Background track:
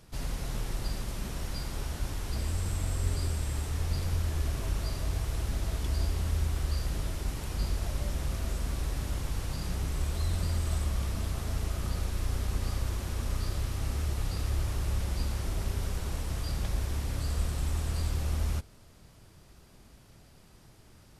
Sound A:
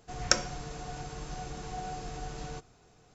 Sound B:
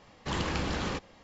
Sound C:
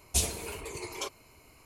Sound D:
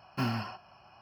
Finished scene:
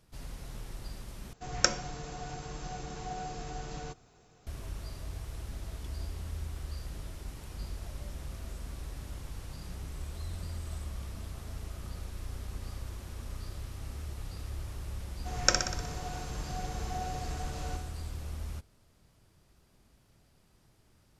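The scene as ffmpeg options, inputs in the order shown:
-filter_complex "[1:a]asplit=2[a][b];[0:a]volume=-9dB[c];[b]aecho=1:1:61|122|183|244|305|366|427|488:0.501|0.296|0.174|0.103|0.0607|0.0358|0.0211|0.0125[d];[c]asplit=2[e][f];[e]atrim=end=1.334[g];[a]atrim=end=3.14,asetpts=PTS-STARTPTS,volume=-0.5dB[h];[f]atrim=start=4.466[i];[d]atrim=end=3.14,asetpts=PTS-STARTPTS,volume=-0.5dB,afade=t=in:d=0.004:c=hsin,afade=t=out:st=3.136:d=0.004:c=hsin,adelay=15170[j];[g][h]acrossfade=d=0.004:c1=hsin:c2=hsin[k];[k][i]acrossfade=d=0.004:c1=hsin:c2=hsin[l];[l][j]amix=inputs=2:normalize=0"

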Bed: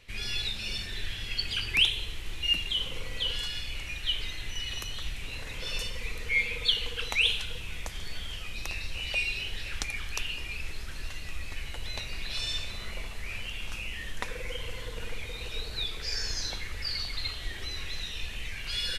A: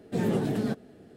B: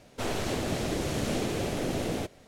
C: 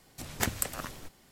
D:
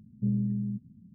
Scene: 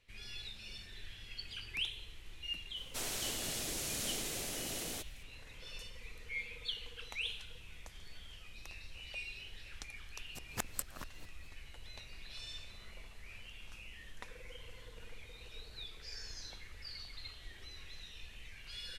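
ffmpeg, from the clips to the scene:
-filter_complex "[0:a]volume=-14.5dB[a];[2:a]crystalizer=i=9:c=0[b];[3:a]aeval=exprs='val(0)*pow(10,-27*if(lt(mod(-4.6*n/s,1),2*abs(-4.6)/1000),1-mod(-4.6*n/s,1)/(2*abs(-4.6)/1000),(mod(-4.6*n/s,1)-2*abs(-4.6)/1000)/(1-2*abs(-4.6)/1000))/20)':c=same[c];[b]atrim=end=2.47,asetpts=PTS-STARTPTS,volume=-17dB,afade=t=in:d=0.004:c=hsin,afade=t=out:st=2.466:d=0.004:c=hsin,adelay=2760[d];[c]atrim=end=1.31,asetpts=PTS-STARTPTS,volume=-4.5dB,afade=t=in:d=0.004:c=hsin,afade=t=out:st=1.306:d=0.004:c=hsin,adelay=10170[e];[a][d][e]amix=inputs=3:normalize=0"

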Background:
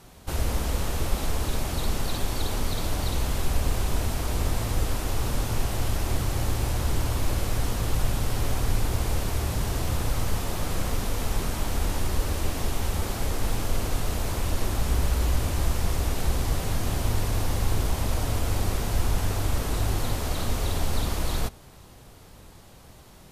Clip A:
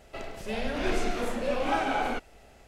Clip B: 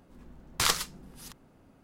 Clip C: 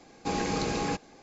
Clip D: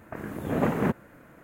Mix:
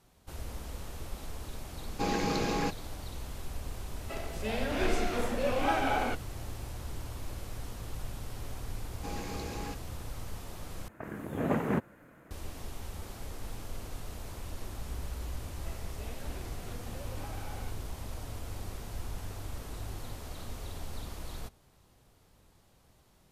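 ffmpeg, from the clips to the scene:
-filter_complex "[3:a]asplit=2[a][b];[1:a]asplit=2[c][d];[0:a]volume=-14.5dB[e];[a]lowpass=6.5k[f];[b]asoftclip=type=hard:threshold=-23.5dB[g];[4:a]aresample=32000,aresample=44100[h];[d]acompressor=threshold=-31dB:ratio=6:attack=3.2:release=140:knee=1:detection=peak[i];[e]asplit=2[j][k];[j]atrim=end=10.884[l];[h]atrim=end=1.43,asetpts=PTS-STARTPTS,volume=-4.5dB[m];[k]atrim=start=12.306[n];[f]atrim=end=1.22,asetpts=PTS-STARTPTS,volume=-1dB,afade=t=in:d=0.004:c=hsin,afade=t=out:st=1.216:d=0.004:c=hsin,adelay=1740[o];[c]atrim=end=2.67,asetpts=PTS-STARTPTS,volume=-1.5dB,afade=t=in:d=0.004:c=hsin,afade=t=out:st=2.666:d=0.004:c=hsin,adelay=3960[p];[g]atrim=end=1.22,asetpts=PTS-STARTPTS,volume=-10.5dB,afade=t=in:d=0.004:c=hsin,afade=t=out:st=1.216:d=0.004:c=hsin,adelay=8780[q];[i]atrim=end=2.67,asetpts=PTS-STARTPTS,volume=-12.5dB,afade=t=in:d=0.004:c=hsin,afade=t=out:st=2.666:d=0.004:c=hsin,adelay=15520[r];[l][m]acrossfade=d=0.004:c1=hsin:c2=hsin[s];[s][n]acrossfade=d=0.004:c1=hsin:c2=hsin[t];[t][o][p][q][r]amix=inputs=5:normalize=0"

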